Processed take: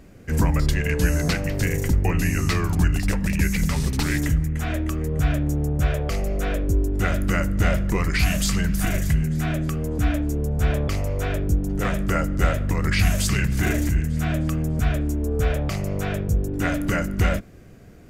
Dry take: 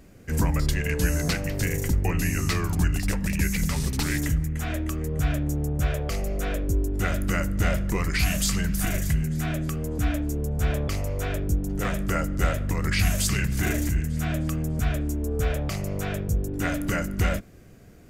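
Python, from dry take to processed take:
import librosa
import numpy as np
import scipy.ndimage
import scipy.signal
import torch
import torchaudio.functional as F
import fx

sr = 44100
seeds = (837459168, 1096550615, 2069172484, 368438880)

y = fx.high_shelf(x, sr, hz=5000.0, db=-5.5)
y = y * librosa.db_to_amplitude(3.5)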